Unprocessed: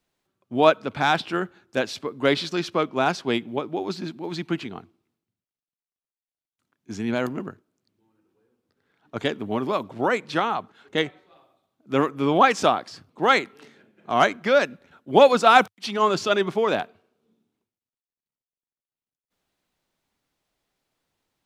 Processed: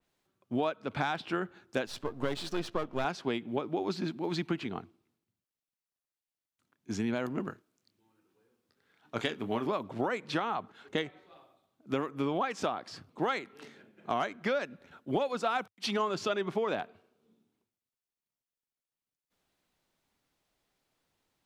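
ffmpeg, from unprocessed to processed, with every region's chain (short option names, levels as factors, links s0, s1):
-filter_complex "[0:a]asettb=1/sr,asplit=3[s0][s1][s2];[s0]atrim=end=1.864[s3];[s1]atrim=start=1.86:end=3.05,asetpts=PTS-STARTPTS,afade=t=in:d=0.004:c=qsin,afade=t=out:st=1.186:d=0.004:c=qsin,aeval=exprs='if(lt(val(0),0),0.251*val(0),val(0))':c=same,equalizer=f=2200:t=o:w=0.21:g=-5.5[s4];[s2]atrim=start=3.046[s5];[s3][s4]acrossfade=d=0.004:c1=hsin:c2=qsin[s6];[s6][s5]acrossfade=d=0.004:c1=qsin:c2=hsin,asettb=1/sr,asplit=3[s7][s8][s9];[s7]atrim=end=7.454[s10];[s8]atrim=start=7.45:end=9.66,asetpts=PTS-STARTPTS,afade=t=in:d=0.004:c=qsin,afade=t=out:st=2.206:d=0.004:c=qsin,tiltshelf=f=1200:g=-3.5,asplit=2[s11][s12];[s12]adelay=26,volume=0.282[s13];[s11][s13]amix=inputs=2:normalize=0,atrim=end_sample=97461[s14];[s9]atrim=start=9.656[s15];[s10][s14]acrossfade=d=0.004:c1=hsin:c2=qsin[s16];[s16][s15]acrossfade=d=0.004:c1=qsin:c2=hsin,acompressor=threshold=0.0501:ratio=16,adynamicequalizer=threshold=0.00447:dfrequency=3500:dqfactor=0.7:tfrequency=3500:tqfactor=0.7:attack=5:release=100:ratio=0.375:range=3:mode=cutabove:tftype=highshelf,volume=0.891"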